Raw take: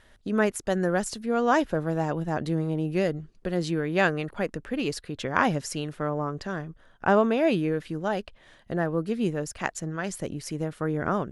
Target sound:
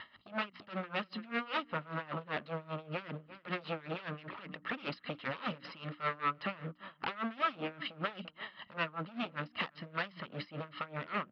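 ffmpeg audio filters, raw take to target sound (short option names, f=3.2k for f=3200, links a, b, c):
-filter_complex "[0:a]aemphasis=mode=production:type=50kf,bandreject=f=60:t=h:w=6,bandreject=f=120:t=h:w=6,bandreject=f=180:t=h:w=6,bandreject=f=240:t=h:w=6,bandreject=f=300:t=h:w=6,aecho=1:1:1:0.82,acompressor=threshold=-34dB:ratio=4,aresample=11025,aeval=exprs='0.0188*(abs(mod(val(0)/0.0188+3,4)-2)-1)':c=same,aresample=44100,asplit=2[a][b];[b]adelay=344,volume=-18dB,highshelf=f=4k:g=-7.74[c];[a][c]amix=inputs=2:normalize=0,asoftclip=type=hard:threshold=-38.5dB,highpass=230,equalizer=f=330:t=q:w=4:g=-4,equalizer=f=530:t=q:w=4:g=5,equalizer=f=750:t=q:w=4:g=-5,equalizer=f=1.3k:t=q:w=4:g=9,equalizer=f=2.7k:t=q:w=4:g=4,lowpass=f=3.7k:w=0.5412,lowpass=f=3.7k:w=1.3066,aeval=exprs='val(0)*pow(10,-20*(0.5-0.5*cos(2*PI*5.1*n/s))/20)':c=same,volume=9dB"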